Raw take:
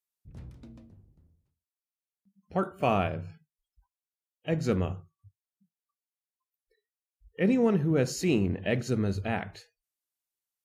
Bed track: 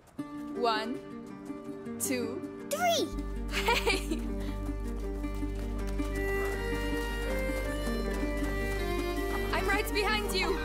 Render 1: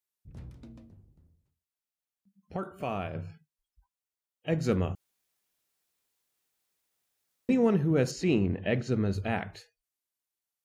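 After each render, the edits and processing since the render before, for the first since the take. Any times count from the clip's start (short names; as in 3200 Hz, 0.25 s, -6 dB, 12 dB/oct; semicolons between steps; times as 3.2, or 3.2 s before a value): 2.56–3.15 compressor 1.5:1, threshold -42 dBFS; 4.95–7.49 room tone; 8.11–9.13 air absorption 89 m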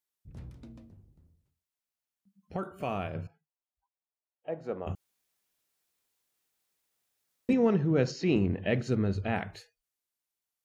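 3.27–4.87 band-pass 710 Hz, Q 1.8; 7.53–8.36 elliptic band-pass 100–5700 Hz; 8.95–9.36 air absorption 88 m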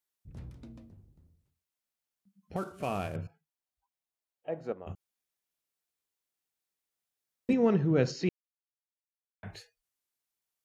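2.56–3.16 CVSD 64 kbps; 4.72–7.67 upward expander, over -40 dBFS; 8.29–9.43 mute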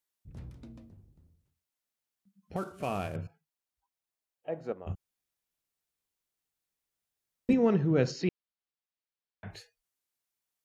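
4.85–7.59 low shelf 140 Hz +9 dB; 8.22–9.51 steep low-pass 5300 Hz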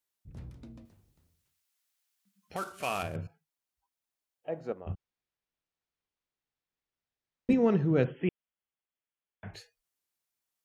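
0.85–3.03 tilt shelf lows -9 dB, about 690 Hz; 4.81–7.5 air absorption 150 m; 8.04–9.54 brick-wall FIR low-pass 3500 Hz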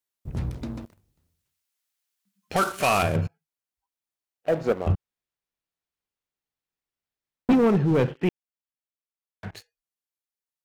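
vocal rider within 5 dB 0.5 s; sample leveller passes 3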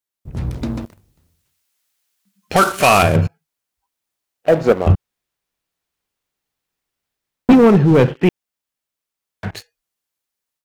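AGC gain up to 11 dB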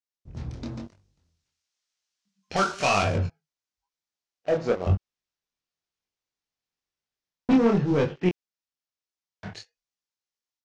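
chorus 0.99 Hz, delay 20 ms, depth 6.5 ms; ladder low-pass 7000 Hz, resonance 40%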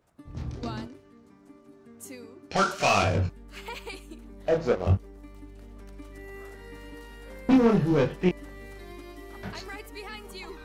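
add bed track -11.5 dB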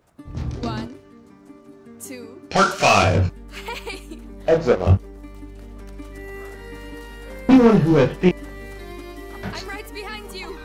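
gain +7.5 dB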